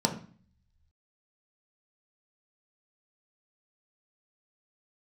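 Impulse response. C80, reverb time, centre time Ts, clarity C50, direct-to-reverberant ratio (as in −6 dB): 14.5 dB, 0.45 s, 14 ms, 10.5 dB, 2.0 dB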